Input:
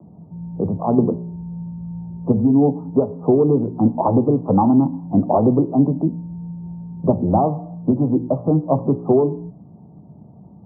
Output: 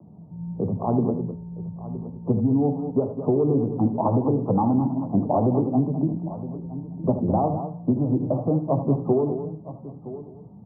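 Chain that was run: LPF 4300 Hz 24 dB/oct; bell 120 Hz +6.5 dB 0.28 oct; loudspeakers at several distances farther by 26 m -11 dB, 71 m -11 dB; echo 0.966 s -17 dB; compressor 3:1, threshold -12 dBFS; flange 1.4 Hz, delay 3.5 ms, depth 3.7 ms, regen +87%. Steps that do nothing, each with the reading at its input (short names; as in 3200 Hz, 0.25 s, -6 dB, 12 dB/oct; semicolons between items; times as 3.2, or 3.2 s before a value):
LPF 4300 Hz: input band ends at 1100 Hz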